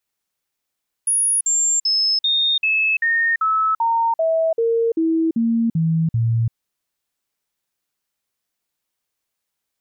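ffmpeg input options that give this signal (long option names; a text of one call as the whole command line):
ffmpeg -f lavfi -i "aevalsrc='0.178*clip(min(mod(t,0.39),0.34-mod(t,0.39))/0.005,0,1)*sin(2*PI*10400*pow(2,-floor(t/0.39)/2)*mod(t,0.39))':duration=5.46:sample_rate=44100" out.wav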